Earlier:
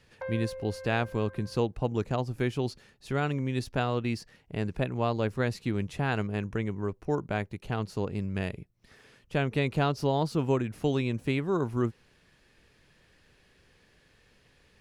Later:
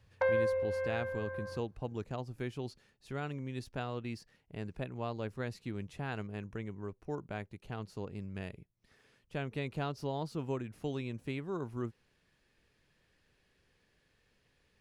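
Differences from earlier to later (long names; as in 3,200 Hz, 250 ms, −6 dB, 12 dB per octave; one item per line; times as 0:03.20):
speech −10.0 dB
background +8.0 dB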